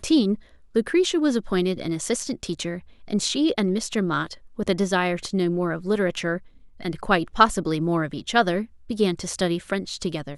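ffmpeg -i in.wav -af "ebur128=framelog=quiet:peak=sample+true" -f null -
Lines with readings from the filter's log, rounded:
Integrated loudness:
  I:         -24.2 LUFS
  Threshold: -34.3 LUFS
Loudness range:
  LRA:         2.1 LU
  Threshold: -44.3 LUFS
  LRA low:   -25.5 LUFS
  LRA high:  -23.4 LUFS
Sample peak:
  Peak:       -1.2 dBFS
True peak:
  Peak:       -1.2 dBFS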